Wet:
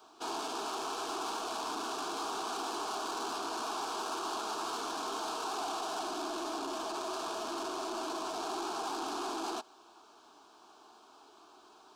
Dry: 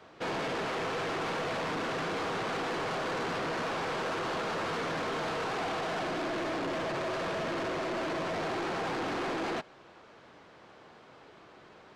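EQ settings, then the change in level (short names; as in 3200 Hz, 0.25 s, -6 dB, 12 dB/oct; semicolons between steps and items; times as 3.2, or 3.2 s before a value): tone controls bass -14 dB, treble +6 dB; high shelf 8500 Hz +5.5 dB; fixed phaser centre 530 Hz, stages 6; 0.0 dB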